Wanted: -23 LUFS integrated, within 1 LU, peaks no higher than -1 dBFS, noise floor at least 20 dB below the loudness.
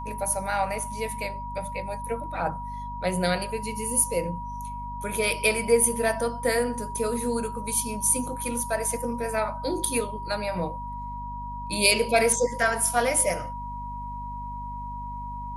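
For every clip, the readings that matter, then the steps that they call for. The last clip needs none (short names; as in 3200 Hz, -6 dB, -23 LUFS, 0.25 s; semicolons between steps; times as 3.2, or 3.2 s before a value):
hum 50 Hz; harmonics up to 250 Hz; hum level -36 dBFS; steady tone 960 Hz; tone level -34 dBFS; loudness -26.5 LUFS; peak -5.0 dBFS; loudness target -23.0 LUFS
-> notches 50/100/150/200/250 Hz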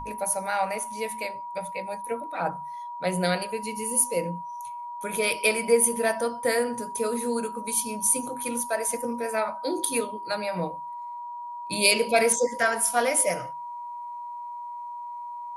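hum none; steady tone 960 Hz; tone level -34 dBFS
-> notch 960 Hz, Q 30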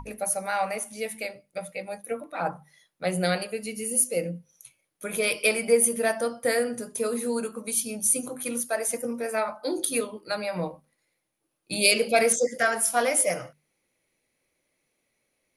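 steady tone none; loudness -26.0 LUFS; peak -5.0 dBFS; loudness target -23.0 LUFS
-> gain +3 dB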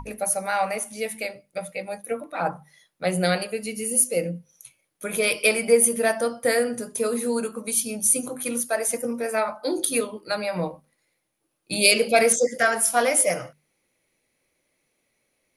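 loudness -23.0 LUFS; peak -2.0 dBFS; noise floor -74 dBFS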